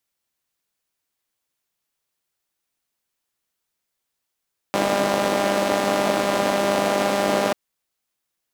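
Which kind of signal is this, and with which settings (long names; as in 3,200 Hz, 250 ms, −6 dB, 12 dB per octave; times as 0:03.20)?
pulse-train model of a four-cylinder engine, steady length 2.79 s, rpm 6,000, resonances 300/560 Hz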